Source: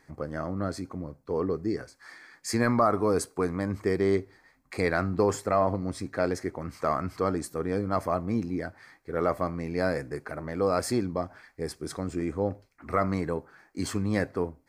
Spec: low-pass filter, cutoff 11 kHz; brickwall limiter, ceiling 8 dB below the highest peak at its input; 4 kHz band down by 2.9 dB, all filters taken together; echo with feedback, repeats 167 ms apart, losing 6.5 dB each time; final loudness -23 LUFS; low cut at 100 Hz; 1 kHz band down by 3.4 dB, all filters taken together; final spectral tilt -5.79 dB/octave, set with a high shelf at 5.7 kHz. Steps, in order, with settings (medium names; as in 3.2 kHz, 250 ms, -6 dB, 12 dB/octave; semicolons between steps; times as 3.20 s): high-pass 100 Hz; low-pass 11 kHz; peaking EQ 1 kHz -4.5 dB; peaking EQ 4 kHz -5.5 dB; treble shelf 5.7 kHz +4 dB; peak limiter -20.5 dBFS; feedback delay 167 ms, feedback 47%, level -6.5 dB; trim +9.5 dB